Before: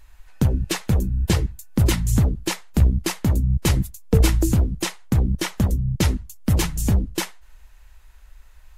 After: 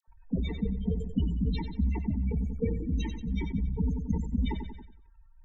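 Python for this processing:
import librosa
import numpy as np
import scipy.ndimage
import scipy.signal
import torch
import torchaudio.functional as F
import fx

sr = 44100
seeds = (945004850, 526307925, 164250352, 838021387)

p1 = scipy.signal.sosfilt(scipy.signal.butter(4, 9600.0, 'lowpass', fs=sr, output='sos'), x)
p2 = fx.low_shelf(p1, sr, hz=89.0, db=-8.0)
p3 = p2 + 0.88 * np.pad(p2, (int(4.4 * sr / 1000.0), 0))[:len(p2)]
p4 = fx.spec_topn(p3, sr, count=8)
p5 = fx.stretch_vocoder_free(p4, sr, factor=0.62)
p6 = fx.env_phaser(p5, sr, low_hz=320.0, high_hz=1400.0, full_db=-26.0)
p7 = fx.dispersion(p6, sr, late='lows', ms=78.0, hz=1000.0)
p8 = p7 + fx.echo_feedback(p7, sr, ms=92, feedback_pct=51, wet_db=-10.5, dry=0)
p9 = fx.sustainer(p8, sr, db_per_s=51.0)
y = p9 * librosa.db_to_amplitude(-4.5)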